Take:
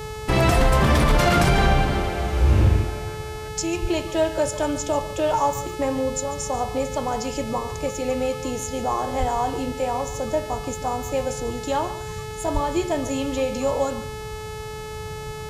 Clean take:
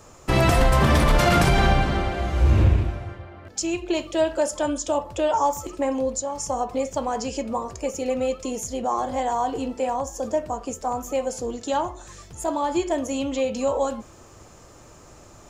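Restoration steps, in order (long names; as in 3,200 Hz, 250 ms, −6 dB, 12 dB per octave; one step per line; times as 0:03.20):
hum removal 431.3 Hz, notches 31
high-pass at the plosives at 0:03.81/0:09.19/0:12.53
noise reduction from a noise print 14 dB
echo removal 143 ms −15 dB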